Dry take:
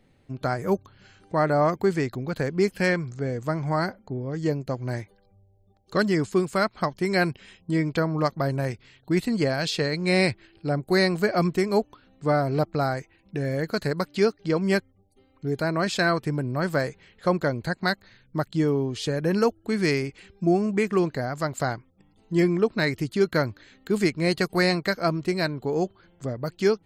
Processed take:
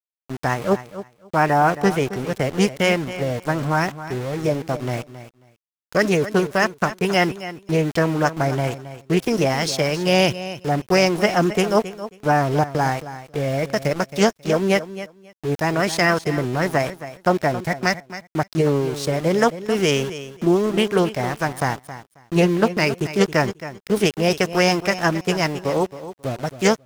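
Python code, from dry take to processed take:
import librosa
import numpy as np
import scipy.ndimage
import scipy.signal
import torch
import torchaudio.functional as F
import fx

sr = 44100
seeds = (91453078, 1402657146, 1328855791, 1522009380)

y = fx.formant_shift(x, sr, semitones=4)
y = np.where(np.abs(y) >= 10.0 ** (-34.0 / 20.0), y, 0.0)
y = fx.echo_feedback(y, sr, ms=270, feedback_pct=17, wet_db=-13.5)
y = fx.doppler_dist(y, sr, depth_ms=0.13)
y = F.gain(torch.from_numpy(y), 4.5).numpy()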